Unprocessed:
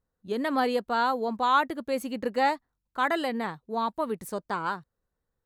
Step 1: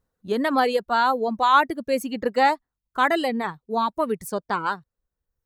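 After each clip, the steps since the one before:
reverb reduction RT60 1.1 s
level +6 dB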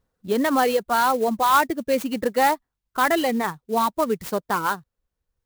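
in parallel at +0.5 dB: brickwall limiter −16.5 dBFS, peak gain reduction 11.5 dB
on the sum: converter with an unsteady clock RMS 0.027 ms
level −3.5 dB

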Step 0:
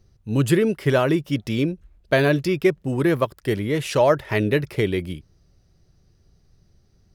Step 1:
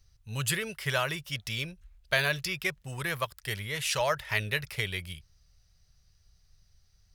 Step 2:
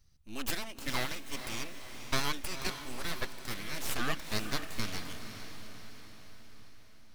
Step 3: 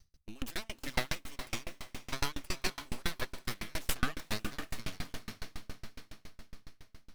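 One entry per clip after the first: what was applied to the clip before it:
guitar amp tone stack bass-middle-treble 10-0-10; level +2.5 dB
full-wave rectification; feedback delay with all-pass diffusion 499 ms, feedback 54%, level −9 dB; level −2.5 dB
on a send at −23.5 dB: convolution reverb RT60 0.95 s, pre-delay 98 ms; on the sum: tremolo with a ramp in dB decaying 7.2 Hz, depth 34 dB; level +7 dB

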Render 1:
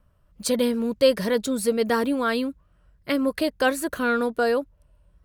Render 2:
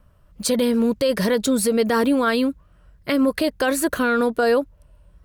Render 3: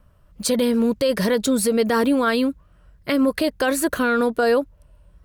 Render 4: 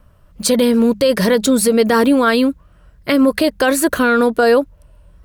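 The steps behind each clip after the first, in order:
brickwall limiter −18 dBFS, peak gain reduction 11.5 dB; level +7 dB
no processing that can be heard
mains-hum notches 50/100/150/200 Hz; level +6 dB

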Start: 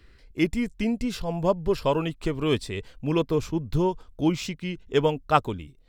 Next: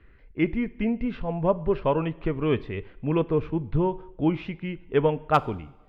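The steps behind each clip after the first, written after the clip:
low-pass filter 2,500 Hz 24 dB per octave
hard clipping −9.5 dBFS, distortion −30 dB
coupled-rooms reverb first 0.77 s, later 2.9 s, from −22 dB, DRR 16.5 dB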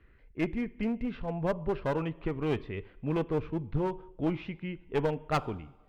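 asymmetric clip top −24.5 dBFS
level −5 dB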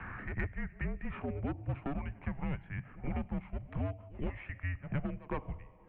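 single-sideband voice off tune −270 Hz 190–2,900 Hz
echo ahead of the sound 120 ms −24 dB
multiband upward and downward compressor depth 100%
level −5 dB

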